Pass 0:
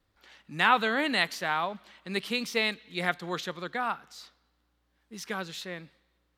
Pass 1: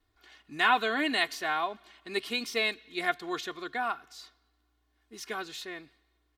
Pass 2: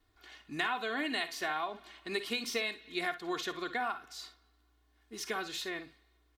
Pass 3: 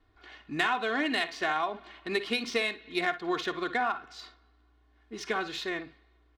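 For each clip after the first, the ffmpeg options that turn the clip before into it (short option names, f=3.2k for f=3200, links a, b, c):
-af "aecho=1:1:2.8:0.77,volume=-3dB"
-af "acompressor=threshold=-33dB:ratio=6,aecho=1:1:52|64:0.2|0.158,volume=2dB"
-af "adynamicsmooth=sensitivity=4:basefreq=3.5k,volume=6dB"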